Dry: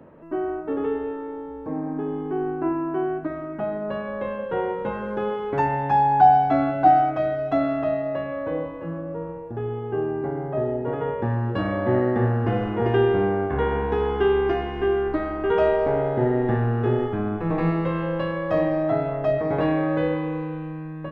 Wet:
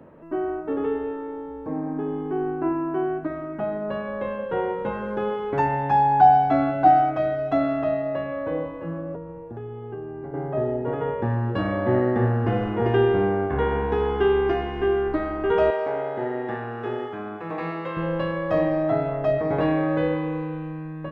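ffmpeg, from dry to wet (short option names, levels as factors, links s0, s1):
-filter_complex "[0:a]asettb=1/sr,asplit=3[s0][s1][s2];[s0]atrim=end=9.154[s3];[s1]atrim=start=9.15:end=10.34,asetpts=PTS-STARTPTS,afade=t=in:d=0.004:c=qsin,afade=t=out:st=1.186:d=0.004:c=qsin,acrossover=split=100|390[s4][s5][s6];[s4]acompressor=threshold=0.00447:ratio=4[s7];[s5]acompressor=threshold=0.0126:ratio=4[s8];[s6]acompressor=threshold=0.00891:ratio=4[s9];[s7][s8][s9]amix=inputs=3:normalize=0[s10];[s2]atrim=start=10.336[s11];[s3][s10]acrossfade=d=0.004:c1=hsin:c2=qsin[s12];[s12][s11]acrossfade=d=0.004:c1=qsin:c2=hsin,asettb=1/sr,asplit=3[s13][s14][s15];[s13]atrim=end=15.704[s16];[s14]atrim=start=15.7:end=17.97,asetpts=PTS-STARTPTS,afade=t=in:d=0.004:c=qsin,afade=t=out:st=2.266:d=0.004:c=qsin,highpass=f=710:p=1[s17];[s15]atrim=start=17.966[s18];[s16][s17]acrossfade=d=0.004:c1=hsin:c2=qsin[s19];[s19][s18]acrossfade=d=0.004:c1=qsin:c2=hsin"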